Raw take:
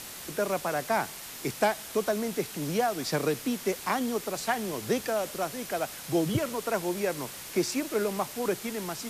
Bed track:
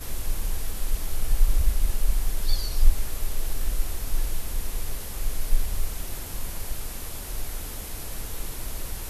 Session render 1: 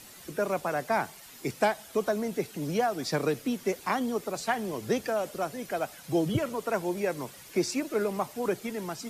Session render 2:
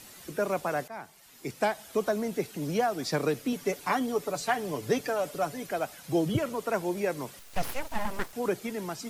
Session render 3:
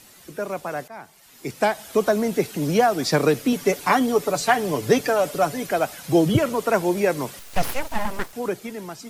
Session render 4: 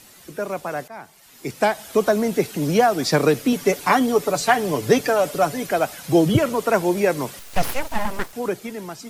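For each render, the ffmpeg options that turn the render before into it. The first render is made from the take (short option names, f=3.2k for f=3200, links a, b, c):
-af "afftdn=nr=10:nf=-42"
-filter_complex "[0:a]asettb=1/sr,asplit=3[a][b][c];[a]atrim=end=3.524[d];[b]atrim=start=3.52:end=5.67,asetpts=PTS-STARTPTS,afade=t=in:d=0.004:c=qsin,afade=t=out:st=2.146:d=0.004:c=qsin,aecho=1:1:6.9:0.51,atrim=end_sample=94815[e];[c]atrim=start=5.666[f];[d][e]acrossfade=d=0.004:c1=hsin:c2=qsin[g];[g][f]acrossfade=d=0.004:c1=qsin:c2=hsin,asettb=1/sr,asplit=3[h][i][j];[h]atrim=end=7.394[k];[i]atrim=start=7.39:end=8.33,asetpts=PTS-STARTPTS,afade=t=in:d=0.004:c=qsin,afade=t=out:st=0.936:d=0.004:c=qsin,aeval=exprs='abs(val(0))':c=same[l];[j]atrim=start=8.326[m];[k][l]acrossfade=d=0.004:c1=hsin:c2=qsin[n];[n][m]acrossfade=d=0.004:c1=qsin:c2=hsin,asplit=2[o][p];[o]atrim=end=0.88,asetpts=PTS-STARTPTS,afade=t=out:st=0.876:d=0.004:c=hsin:silence=0.141254[q];[p]atrim=start=0.88,asetpts=PTS-STARTPTS,afade=t=in:d=1.02:silence=0.141254[r];[q][r]concat=n=2:v=0:a=1"
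-af "dynaudnorm=f=330:g=9:m=9.5dB"
-af "volume=1.5dB"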